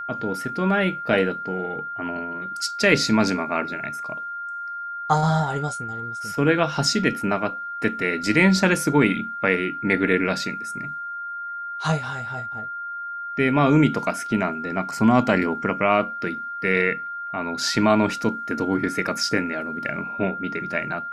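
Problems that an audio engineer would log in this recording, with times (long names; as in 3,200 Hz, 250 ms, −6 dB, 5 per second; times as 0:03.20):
whistle 1,400 Hz −29 dBFS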